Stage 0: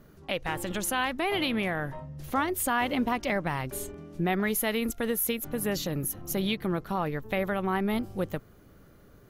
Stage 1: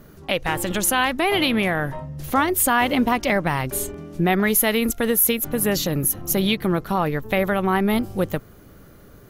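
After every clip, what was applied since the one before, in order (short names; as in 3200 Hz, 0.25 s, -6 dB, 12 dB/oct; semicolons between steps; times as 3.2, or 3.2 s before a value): high shelf 7500 Hz +4.5 dB; gain +8 dB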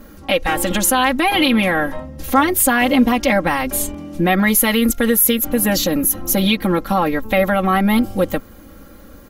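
comb 3.7 ms, depth 86%; in parallel at -2.5 dB: limiter -13 dBFS, peak gain reduction 11 dB; on the sum: gain -1 dB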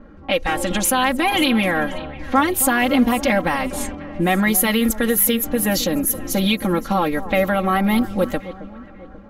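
echo with dull and thin repeats by turns 0.269 s, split 1100 Hz, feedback 64%, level -13.5 dB; low-pass opened by the level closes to 1600 Hz, open at -12.5 dBFS; gain -2.5 dB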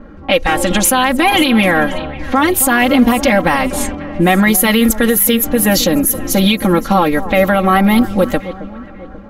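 maximiser +8.5 dB; gain -1 dB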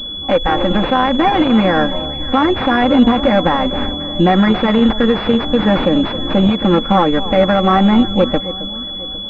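pulse-width modulation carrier 3400 Hz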